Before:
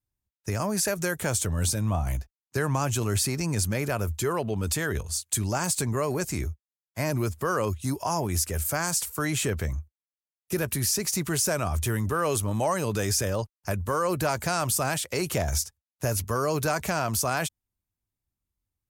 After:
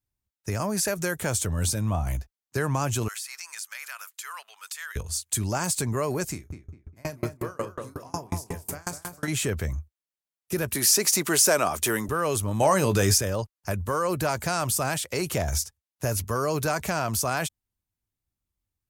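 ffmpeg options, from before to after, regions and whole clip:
-filter_complex "[0:a]asettb=1/sr,asplit=3[s0][s1][s2];[s0]atrim=end=3.084[s3];[s1]atrim=start=3.08:end=4.96,asetpts=PTS-STARTPTS,afade=t=in:d=0.004:c=qsin,afade=t=out:st=1.876:d=0.004:c=qsin,highpass=f=1200:w=0.5412,highpass=f=1200:w=1.3066,acompressor=threshold=0.0224:ratio=4:attack=3.2:release=140:knee=1:detection=peak[s4];[s2]atrim=start=4.956[s5];[s3][s4]acrossfade=d=0.004:c1=hsin:c2=qsin[s6];[s6][s5]acrossfade=d=0.004:c1=qsin:c2=hsin,asettb=1/sr,asplit=3[s7][s8][s9];[s7]atrim=end=6.324[s10];[s8]atrim=start=6.32:end=9.28,asetpts=PTS-STARTPTS,afade=t=in:d=0.004:c=qsin,afade=t=out:st=2.956:d=0.004:c=qsin,asplit=2[s11][s12];[s12]adelay=34,volume=0.398[s13];[s11][s13]amix=inputs=2:normalize=0,atrim=end_sample=130536,asplit=2[s14][s15];[s15]adelay=202,lowpass=f=2200:p=1,volume=0.631,asplit=2[s16][s17];[s17]adelay=202,lowpass=f=2200:p=1,volume=0.5,asplit=2[s18][s19];[s19]adelay=202,lowpass=f=2200:p=1,volume=0.5,asplit=2[s20][s21];[s21]adelay=202,lowpass=f=2200:p=1,volume=0.5,asplit=2[s22][s23];[s23]adelay=202,lowpass=f=2200:p=1,volume=0.5,asplit=2[s24][s25];[s25]adelay=202,lowpass=f=2200:p=1,volume=0.5[s26];[s14][s16][s18][s20][s22][s24][s26]amix=inputs=7:normalize=0,atrim=end_sample=130536,aeval=exprs='val(0)*pow(10,-32*if(lt(mod(5.5*n/s,1),2*abs(5.5)/1000),1-mod(5.5*n/s,1)/(2*abs(5.5)/1000),(mod(5.5*n/s,1)-2*abs(5.5)/1000)/(1-2*abs(5.5)/1000))/20)':c=same[s27];[s9]atrim=start=9.276[s28];[s10][s27]acrossfade=d=0.004:c1=hsin:c2=qsin[s29];[s29][s28]acrossfade=d=0.004:c1=qsin:c2=hsin,asettb=1/sr,asplit=3[s30][s31][s32];[s30]atrim=end=10.754[s33];[s31]atrim=start=10.75:end=12.09,asetpts=PTS-STARTPTS,afade=t=in:d=0.004:c=qsin,afade=t=out:st=1.336:d=0.004:c=qsin,highpass=300,acontrast=64[s34];[s32]atrim=start=12.086[s35];[s33][s34]acrossfade=d=0.004:c1=hsin:c2=qsin[s36];[s36][s35]acrossfade=d=0.004:c1=qsin:c2=hsin,asettb=1/sr,asplit=3[s37][s38][s39];[s37]atrim=end=12.604[s40];[s38]atrim=start=12.6:end=13.18,asetpts=PTS-STARTPTS,afade=t=in:d=0.004:c=qsin,afade=t=out:st=0.576:d=0.004:c=qsin,acontrast=27,asplit=2[s41][s42];[s42]adelay=21,volume=0.251[s43];[s41][s43]amix=inputs=2:normalize=0,atrim=end_sample=25578[s44];[s39]atrim=start=13.176[s45];[s40][s44]acrossfade=d=0.004:c1=hsin:c2=qsin[s46];[s46][s45]acrossfade=d=0.004:c1=qsin:c2=hsin"

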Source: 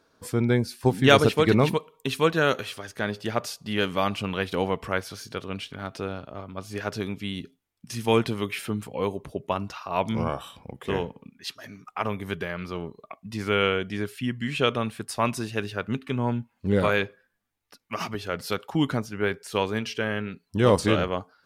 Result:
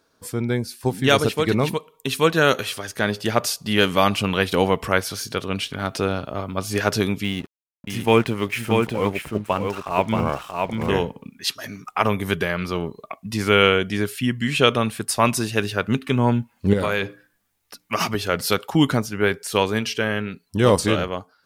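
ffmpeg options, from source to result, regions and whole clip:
-filter_complex "[0:a]asettb=1/sr,asplit=3[s0][s1][s2];[s0]atrim=end=7.244[s3];[s1]atrim=start=7.24:end=10.89,asetpts=PTS-STARTPTS,afade=t=in:d=0.004:c=qsin,afade=t=out:st=3.646:d=0.004:c=qsin,highshelf=f=3200:t=q:w=1.5:g=-6.5,aeval=exprs='sgn(val(0))*max(abs(val(0))-0.00398,0)':c=same,aecho=1:1:630:0.631,atrim=end_sample=160965[s4];[s2]atrim=start=10.886[s5];[s3][s4]acrossfade=d=0.004:c1=hsin:c2=qsin[s6];[s6][s5]acrossfade=d=0.004:c1=qsin:c2=hsin,asettb=1/sr,asplit=3[s7][s8][s9];[s7]atrim=end=16.734[s10];[s8]atrim=start=16.73:end=17.94,asetpts=PTS-STARTPTS,afade=t=in:d=0.004:c=qsin,afade=t=out:st=1.206:d=0.004:c=qsin,bandreject=f=60:t=h:w=6,bandreject=f=120:t=h:w=6,bandreject=f=180:t=h:w=6,bandreject=f=240:t=h:w=6,bandreject=f=300:t=h:w=6,acompressor=threshold=0.0501:ratio=4:attack=3.2:release=140:knee=1:detection=peak[s11];[s9]atrim=start=17.936[s12];[s10][s11]acrossfade=d=0.004:c1=hsin:c2=qsin[s13];[s13][s12]acrossfade=d=0.004:c1=qsin:c2=hsin,highshelf=f=5500:g=7.5,dynaudnorm=f=200:g=9:m=3.76,volume=0.891"

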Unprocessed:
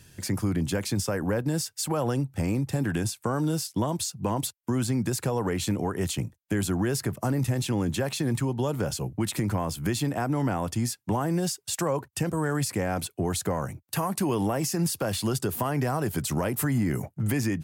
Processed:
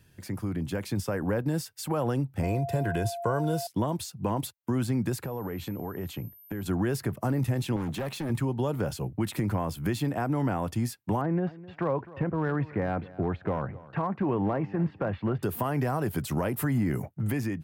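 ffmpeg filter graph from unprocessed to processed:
-filter_complex "[0:a]asettb=1/sr,asplit=3[s0][s1][s2];[s0]atrim=end=2.434[s3];[s1]atrim=start=2.43:end=3.67,asetpts=PTS-STARTPTS,afade=t=in:d=0.004:c=qsin,afade=t=out:st=1.236:d=0.004:c=qsin,highpass=47,aecho=1:1:2:0.59,atrim=end_sample=54684,aeval=exprs='val(0)+0.0251*sin(2*PI*690*n/s)':c=same[s4];[s2]atrim=start=3.666[s5];[s3][s4]acrossfade=d=0.004:c1=hsin:c2=qsin[s6];[s6][s5]acrossfade=d=0.004:c1=qsin:c2=hsin,asettb=1/sr,asplit=3[s7][s8][s9];[s7]atrim=end=5.234[s10];[s8]atrim=start=5.23:end=6.66,asetpts=PTS-STARTPTS,afade=t=in:d=0.004:c=qsin,afade=t=out:st=1.426:d=0.004:c=qsin,highshelf=f=3700:g=-9.5,acompressor=threshold=0.0316:ratio=4:attack=3.2:release=140:knee=1:detection=peak,aeval=exprs='val(0)+0.00501*sin(2*PI*13000*n/s)':c=same[s11];[s9]atrim=start=6.656[s12];[s10][s11]acrossfade=d=0.004:c1=hsin:c2=qsin[s13];[s13][s12]acrossfade=d=0.004:c1=qsin:c2=hsin,asettb=1/sr,asplit=3[s14][s15][s16];[s14]atrim=end=7.764[s17];[s15]atrim=start=7.76:end=8.3,asetpts=PTS-STARTPTS,afade=t=in:d=0.004:c=qsin,afade=t=out:st=0.536:d=0.004:c=qsin,highpass=95,asoftclip=type=hard:threshold=0.0422[s18];[s16]atrim=start=8.296[s19];[s17][s18]acrossfade=d=0.004:c1=hsin:c2=qsin[s20];[s20][s19]acrossfade=d=0.004:c1=qsin:c2=hsin,asettb=1/sr,asplit=3[s21][s22][s23];[s21]atrim=end=11.214[s24];[s22]atrim=start=11.21:end=15.43,asetpts=PTS-STARTPTS,afade=t=in:d=0.004:c=qsin,afade=t=out:st=4.216:d=0.004:c=qsin,lowpass=f=2200:w=0.5412,lowpass=f=2200:w=1.3066,asoftclip=type=hard:threshold=0.106,aecho=1:1:259|518:0.119|0.0273,atrim=end_sample=186102[s25];[s23]atrim=start=15.426[s26];[s24][s25]acrossfade=d=0.004:c1=hsin:c2=qsin[s27];[s27][s26]acrossfade=d=0.004:c1=qsin:c2=hsin,equalizer=f=7100:t=o:w=1.6:g=-9,dynaudnorm=f=320:g=5:m=1.78,volume=0.501"

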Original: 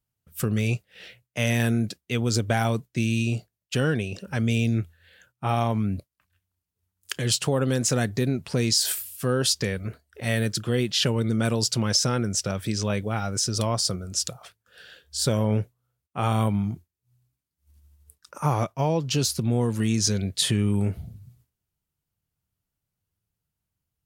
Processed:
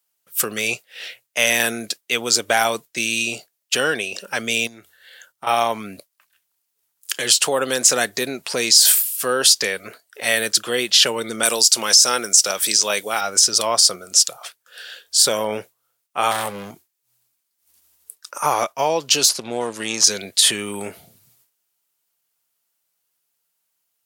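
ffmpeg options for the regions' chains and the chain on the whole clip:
-filter_complex "[0:a]asettb=1/sr,asplit=3[s0][s1][s2];[s0]atrim=end=4.674[s3];[s1]atrim=start=4.67:end=5.47,asetpts=PTS-STARTPTS,afade=t=in:d=0.004:c=qsin,afade=t=out:st=0.796:d=0.004:c=qsin,bandreject=f=2500:w=7.2,acompressor=threshold=0.0282:ratio=16:attack=3.2:release=140:knee=1:detection=peak[s4];[s2]atrim=start=5.466[s5];[s3][s4]acrossfade=d=0.004:c1=hsin:c2=qsin[s6];[s6][s5]acrossfade=d=0.004:c1=qsin:c2=hsin,asettb=1/sr,asplit=3[s7][s8][s9];[s7]atrim=end=11.434[s10];[s8]atrim=start=11.43:end=13.21,asetpts=PTS-STARTPTS,afade=t=in:d=0.004:c=qsin,afade=t=out:st=1.776:d=0.004:c=qsin,highpass=f=160:p=1,bass=f=250:g=-1,treble=f=4000:g=10[s11];[s9]atrim=start=13.206[s12];[s10][s11]acrossfade=d=0.004:c1=hsin:c2=qsin[s13];[s13][s12]acrossfade=d=0.004:c1=qsin:c2=hsin,asettb=1/sr,asplit=3[s14][s15][s16];[s14]atrim=end=16.314[s17];[s15]atrim=start=16.31:end=16.71,asetpts=PTS-STARTPTS,afade=t=in:d=0.004:c=qsin,afade=t=out:st=0.396:d=0.004:c=qsin,aecho=1:1:1.5:0.96,atrim=end_sample=17640,asoftclip=type=hard:threshold=0.0891[s18];[s16]atrim=start=16.706[s19];[s17][s18]acrossfade=d=0.004:c1=hsin:c2=qsin[s20];[s20][s19]acrossfade=d=0.004:c1=qsin:c2=hsin,asettb=1/sr,asplit=3[s21][s22][s23];[s21]atrim=end=19.294[s24];[s22]atrim=start=19.29:end=20.04,asetpts=PTS-STARTPTS,afade=t=in:d=0.004:c=qsin,afade=t=out:st=0.746:d=0.004:c=qsin,aeval=exprs='if(lt(val(0),0),0.447*val(0),val(0))':c=same,lowpass=7900[s25];[s23]atrim=start=20.036[s26];[s24][s25]acrossfade=d=0.004:c1=hsin:c2=qsin[s27];[s27][s26]acrossfade=d=0.004:c1=qsin:c2=hsin,highpass=540,highshelf=f=3300:g=7,alimiter=level_in=2.99:limit=0.891:release=50:level=0:latency=1,volume=0.891"

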